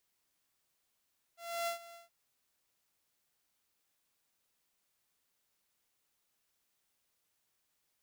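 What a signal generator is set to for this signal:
note with an ADSR envelope saw 682 Hz, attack 300 ms, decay 113 ms, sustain −18 dB, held 0.58 s, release 141 ms −30 dBFS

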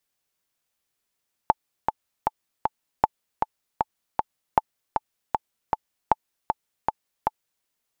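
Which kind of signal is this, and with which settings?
click track 156 BPM, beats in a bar 4, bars 4, 871 Hz, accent 5 dB −3 dBFS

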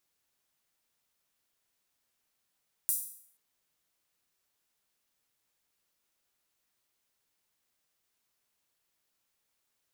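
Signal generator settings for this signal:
open synth hi-hat length 0.48 s, high-pass 9,600 Hz, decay 0.60 s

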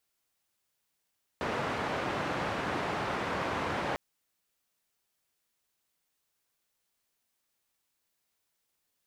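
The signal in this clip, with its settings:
band-limited noise 85–1,300 Hz, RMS −33 dBFS 2.55 s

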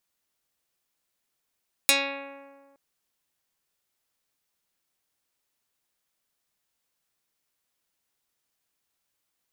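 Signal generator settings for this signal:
Karplus-Strong string C#4, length 0.87 s, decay 1.72 s, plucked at 0.18, dark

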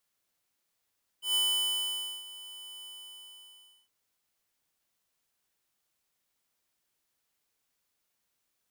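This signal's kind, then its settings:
note with an ADSR envelope square 3,000 Hz, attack 126 ms, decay 884 ms, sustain −19 dB, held 1.62 s, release 1,050 ms −26.5 dBFS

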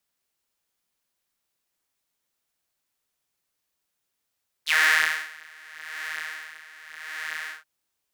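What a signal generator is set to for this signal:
subtractive patch with tremolo D#3, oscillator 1 saw, interval 0 semitones, detune 29 cents, oscillator 2 level −2.5 dB, noise −27.5 dB, filter highpass, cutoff 1,500 Hz, Q 5.4, filter envelope 1.5 octaves, filter decay 0.07 s, filter sustain 15%, attack 34 ms, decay 0.59 s, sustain −17 dB, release 0.14 s, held 2.84 s, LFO 0.85 Hz, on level 14.5 dB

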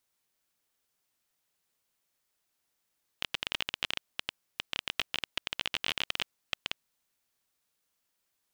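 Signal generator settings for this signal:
Geiger counter clicks 18 per second −12.5 dBFS 3.64 s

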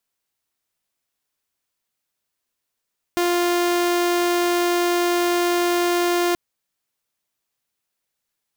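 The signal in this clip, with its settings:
tone saw 350 Hz −15 dBFS 3.18 s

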